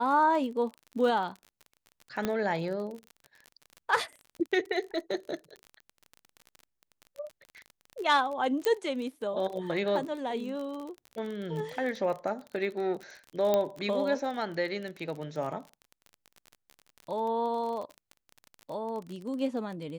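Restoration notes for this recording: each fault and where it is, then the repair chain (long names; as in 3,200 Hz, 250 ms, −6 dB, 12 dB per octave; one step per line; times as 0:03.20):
surface crackle 31 per second −36 dBFS
0:02.25: click −15 dBFS
0:08.65: click −13 dBFS
0:13.54: click −13 dBFS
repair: click removal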